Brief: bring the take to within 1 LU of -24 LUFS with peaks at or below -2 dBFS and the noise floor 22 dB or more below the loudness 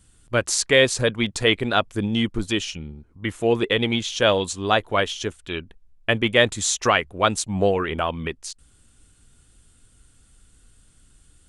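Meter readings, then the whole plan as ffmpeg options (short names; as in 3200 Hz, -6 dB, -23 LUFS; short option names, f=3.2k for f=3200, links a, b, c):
loudness -22.0 LUFS; peak -3.0 dBFS; loudness target -24.0 LUFS
-> -af "volume=-2dB"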